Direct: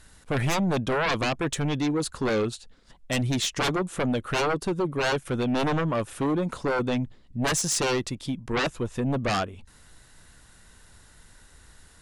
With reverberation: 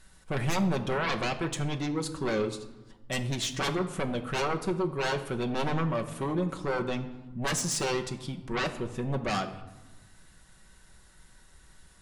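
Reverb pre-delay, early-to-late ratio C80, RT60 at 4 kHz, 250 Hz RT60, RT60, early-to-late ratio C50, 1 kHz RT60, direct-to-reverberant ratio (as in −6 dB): 5 ms, 14.0 dB, 0.70 s, 1.6 s, 1.1 s, 12.0 dB, 1.1 s, 4.0 dB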